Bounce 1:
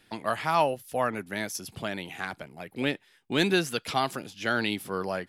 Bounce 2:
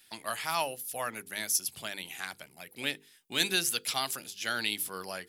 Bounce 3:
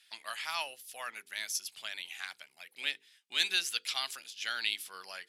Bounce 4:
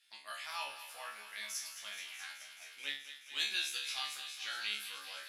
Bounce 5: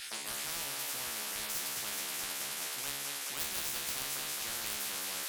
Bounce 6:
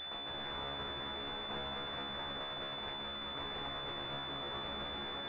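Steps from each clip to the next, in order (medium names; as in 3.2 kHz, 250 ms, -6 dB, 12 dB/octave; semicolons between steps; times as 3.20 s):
pre-emphasis filter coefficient 0.9; hum notches 50/100/150/200/250/300/350/400/450/500 Hz; trim +8 dB
band-pass filter 3 kHz, Q 0.77
feedback comb 70 Hz, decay 0.4 s, harmonics all, mix 100%; on a send: thinning echo 214 ms, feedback 83%, high-pass 660 Hz, level -10.5 dB; on the sum: trim +4 dB
sine folder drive 6 dB, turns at -21.5 dBFS; spectrum-flattening compressor 10:1; trim +3 dB
class-D stage that switches slowly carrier 3.5 kHz; trim -2 dB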